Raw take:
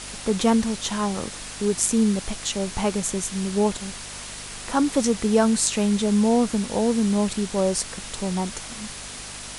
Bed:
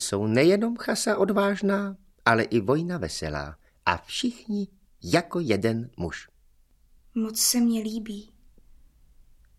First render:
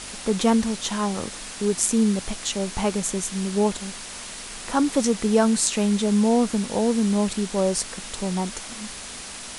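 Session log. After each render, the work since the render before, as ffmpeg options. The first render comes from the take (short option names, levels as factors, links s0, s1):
-af "bandreject=f=50:t=h:w=4,bandreject=f=100:t=h:w=4,bandreject=f=150:t=h:w=4"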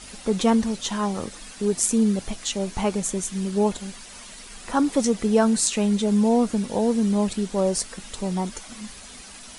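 -af "afftdn=nr=9:nf=-37"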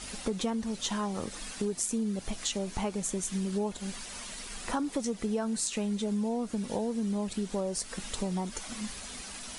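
-af "acompressor=threshold=0.0355:ratio=6"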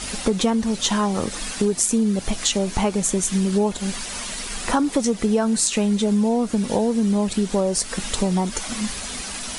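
-af "volume=3.76"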